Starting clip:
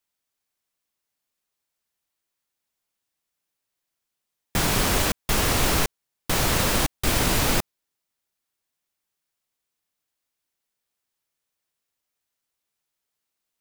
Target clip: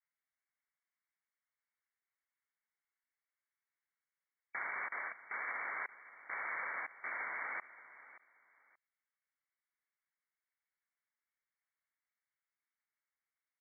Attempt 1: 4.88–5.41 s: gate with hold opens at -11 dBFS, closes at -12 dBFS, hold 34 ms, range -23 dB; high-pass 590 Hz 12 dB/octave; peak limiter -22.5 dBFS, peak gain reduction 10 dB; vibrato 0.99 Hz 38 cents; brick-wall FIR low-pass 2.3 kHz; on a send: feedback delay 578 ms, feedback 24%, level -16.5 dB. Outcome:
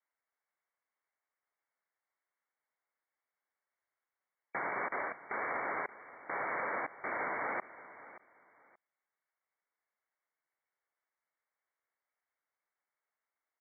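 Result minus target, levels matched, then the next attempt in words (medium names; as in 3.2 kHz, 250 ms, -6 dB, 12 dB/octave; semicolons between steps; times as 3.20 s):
500 Hz band +11.0 dB
4.88–5.41 s: gate with hold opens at -11 dBFS, closes at -12 dBFS, hold 34 ms, range -23 dB; high-pass 1.7 kHz 12 dB/octave; peak limiter -22.5 dBFS, peak gain reduction 9 dB; vibrato 0.99 Hz 38 cents; brick-wall FIR low-pass 2.3 kHz; on a send: feedback delay 578 ms, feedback 24%, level -16.5 dB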